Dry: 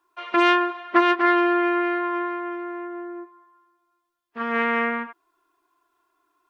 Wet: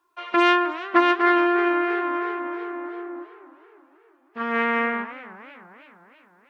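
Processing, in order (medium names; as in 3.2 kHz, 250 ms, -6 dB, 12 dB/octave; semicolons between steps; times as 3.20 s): modulated delay 313 ms, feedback 58%, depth 190 cents, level -17 dB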